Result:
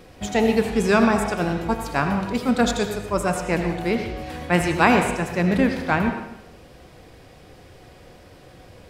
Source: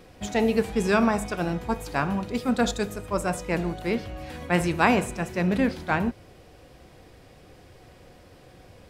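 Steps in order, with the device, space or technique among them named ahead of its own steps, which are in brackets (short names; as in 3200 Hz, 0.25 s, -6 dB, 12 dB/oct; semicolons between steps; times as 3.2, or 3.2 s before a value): filtered reverb send (on a send: HPF 470 Hz 6 dB/oct + LPF 6500 Hz + reverb RT60 0.90 s, pre-delay 75 ms, DRR 6 dB); on the sum: gain +3.5 dB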